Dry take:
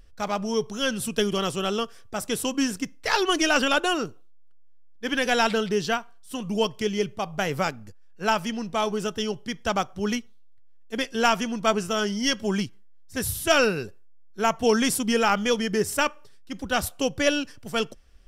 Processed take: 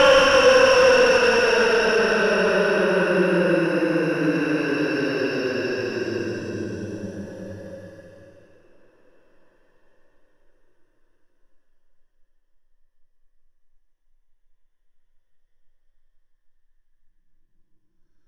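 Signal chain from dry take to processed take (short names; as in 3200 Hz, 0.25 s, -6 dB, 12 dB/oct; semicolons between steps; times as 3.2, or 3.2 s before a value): harmonic-percussive split percussive +9 dB; Paulstretch 25×, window 0.10 s, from 13.59; overdrive pedal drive 18 dB, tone 1100 Hz, clips at -1.5 dBFS; ripple EQ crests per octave 1.2, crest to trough 9 dB; gain -3 dB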